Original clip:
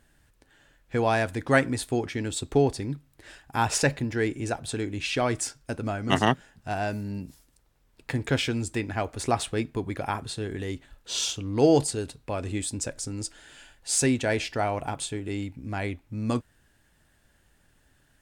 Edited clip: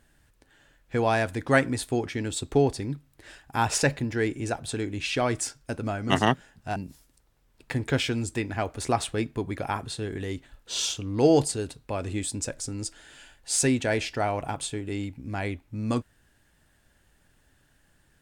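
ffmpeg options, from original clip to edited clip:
ffmpeg -i in.wav -filter_complex "[0:a]asplit=2[link_01][link_02];[link_01]atrim=end=6.762[link_03];[link_02]atrim=start=7.148[link_04];[link_03][link_04]acrossfade=duration=0.004:curve1=hsin:curve2=hsin" out.wav

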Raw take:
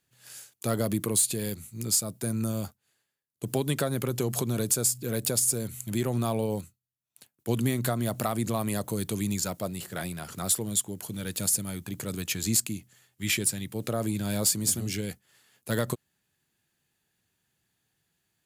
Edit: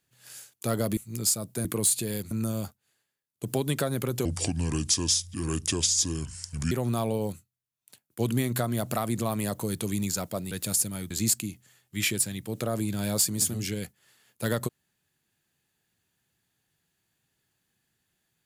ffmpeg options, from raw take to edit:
ffmpeg -i in.wav -filter_complex "[0:a]asplit=8[link_01][link_02][link_03][link_04][link_05][link_06][link_07][link_08];[link_01]atrim=end=0.972[link_09];[link_02]atrim=start=1.628:end=2.312[link_10];[link_03]atrim=start=0.968:end=1.632[link_11];[link_04]atrim=start=2.308:end=4.254[link_12];[link_05]atrim=start=4.25:end=6,asetpts=PTS-STARTPTS,asetrate=31311,aresample=44100,atrim=end_sample=108697,asetpts=PTS-STARTPTS[link_13];[link_06]atrim=start=5.996:end=9.802[link_14];[link_07]atrim=start=11.248:end=11.842[link_15];[link_08]atrim=start=12.368[link_16];[link_09][link_10]acrossfade=duration=0.004:curve1=hsin:curve2=hsin[link_17];[link_17][link_11]acrossfade=duration=0.004:curve1=hsin:curve2=hsin[link_18];[link_18][link_12]acrossfade=duration=0.004:curve1=hsin:curve2=hsin[link_19];[link_19][link_13]acrossfade=duration=0.004:curve1=hsin:curve2=hsin[link_20];[link_20][link_14]acrossfade=duration=0.004:curve1=hsin:curve2=hsin[link_21];[link_21][link_15]acrossfade=duration=0.004:curve1=hsin:curve2=hsin[link_22];[link_22][link_16]acrossfade=duration=0.004:curve1=hsin:curve2=hsin" out.wav

